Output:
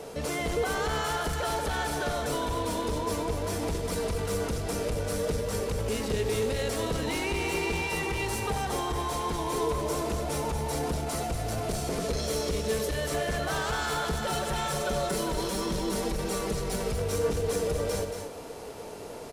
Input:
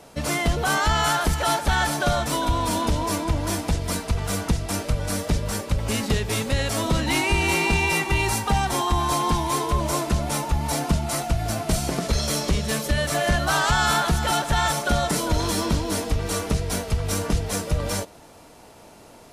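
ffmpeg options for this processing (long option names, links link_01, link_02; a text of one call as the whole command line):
ffmpeg -i in.wav -filter_complex "[0:a]asettb=1/sr,asplit=3[link_01][link_02][link_03];[link_01]atrim=end=14.194[link_04];[link_02]atrim=start=14.19:end=16.91,asetpts=PTS-STARTPTS,afade=type=in:duration=0.004:curve=qsin,afade=type=out:start_time=2.716:duration=0.004:curve=qsin,aecho=1:1:5.3:0.68,atrim=end_sample=119952[link_05];[link_03]atrim=start=16.906[link_06];[link_04][link_05]acrossfade=duration=0.004:curve1=hsin:curve2=qsin[link_07];[link_07][link_06]acrossfade=duration=0.004:curve1=qsin:curve2=hsin,asoftclip=type=tanh:threshold=-18.5dB,alimiter=level_in=5.5dB:limit=-24dB:level=0:latency=1:release=72,volume=-5.5dB,equalizer=frequency=450:width=3.5:gain=12,aecho=1:1:93|230:0.237|0.422,volume=2.5dB" out.wav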